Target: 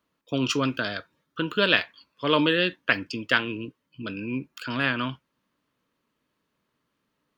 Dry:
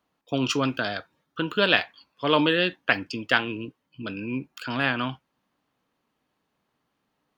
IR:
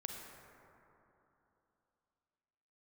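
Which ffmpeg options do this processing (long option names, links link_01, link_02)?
-af "equalizer=frequency=770:width_type=o:width=0.22:gain=-14"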